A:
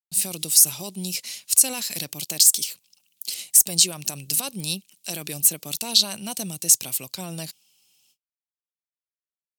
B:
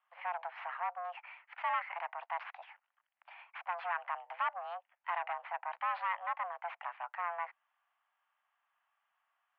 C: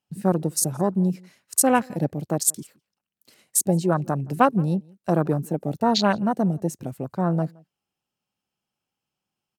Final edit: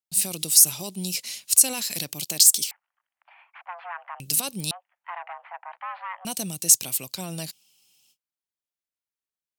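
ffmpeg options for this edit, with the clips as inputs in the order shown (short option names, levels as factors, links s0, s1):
-filter_complex "[1:a]asplit=2[s0][s1];[0:a]asplit=3[s2][s3][s4];[s2]atrim=end=2.712[s5];[s0]atrim=start=2.708:end=4.202[s6];[s3]atrim=start=4.198:end=4.712[s7];[s1]atrim=start=4.708:end=6.252[s8];[s4]atrim=start=6.248[s9];[s5][s6]acrossfade=d=0.004:c1=hsin:c2=hsin[s10];[s10][s7]acrossfade=d=0.004:c1=hsin:c2=hsin[s11];[s11][s8]acrossfade=d=0.004:c1=hsin:c2=hsin[s12];[s12][s9]acrossfade=d=0.004:c1=hsin:c2=hsin"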